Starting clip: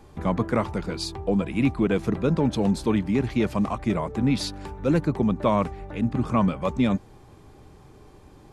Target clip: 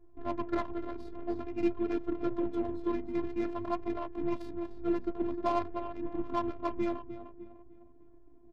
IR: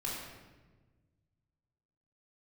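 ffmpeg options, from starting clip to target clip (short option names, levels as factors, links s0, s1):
-filter_complex "[0:a]asplit=2[s0][s1];[s1]aecho=0:1:302|604|906|1208|1510:0.355|0.163|0.0751|0.0345|0.0159[s2];[s0][s2]amix=inputs=2:normalize=0,afftfilt=real='hypot(re,im)*cos(PI*b)':imag='0':win_size=512:overlap=0.75,flanger=delay=6.3:depth=9.6:regen=51:speed=0.49:shape=sinusoidal,adynamicsmooth=sensitivity=3:basefreq=520"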